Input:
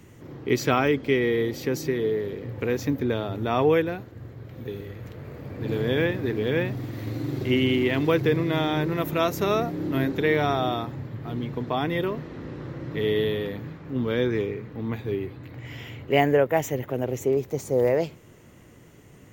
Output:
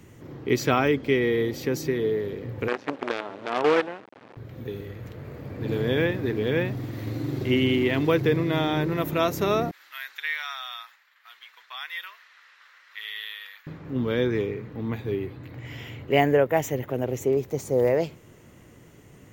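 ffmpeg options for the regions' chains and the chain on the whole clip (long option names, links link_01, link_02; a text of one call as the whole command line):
ffmpeg -i in.wav -filter_complex "[0:a]asettb=1/sr,asplit=3[link_01][link_02][link_03];[link_01]atrim=end=2.684[link_04];[link_02]atrim=start=2.68:end=4.37,asetpts=PTS-STARTPTS,afade=type=in:duration=0.004:curve=qsin,afade=type=out:start_time=1.686:duration=0.004:curve=qsin,acrusher=bits=4:dc=4:mix=0:aa=0.000001,highpass=330,lowpass=2500[link_05];[link_03]atrim=start=4.366[link_06];[link_04][link_05]acrossfade=duration=0.004:curve1=hsin:curve2=qsin[link_07];[link_07][link_06]acrossfade=duration=0.004:curve1=qsin:curve2=hsin,asettb=1/sr,asplit=3[link_08][link_09][link_10];[link_08]atrim=end=9.714[link_11];[link_09]atrim=start=9.71:end=13.67,asetpts=PTS-STARTPTS,afade=type=in:duration=0.004:curve=qsin,afade=type=out:start_time=3.956:duration=0.004:curve=qsin,highpass=frequency=1400:width=0.5412,highpass=frequency=1400:width=1.3066,agate=range=-33dB:threshold=-53dB:ratio=3:release=100:detection=peak[link_12];[link_10]atrim=start=13.666[link_13];[link_11][link_12]acrossfade=duration=0.004:curve1=hsin:curve2=qsin[link_14];[link_14][link_13]acrossfade=duration=0.004:curve1=qsin:curve2=hsin" out.wav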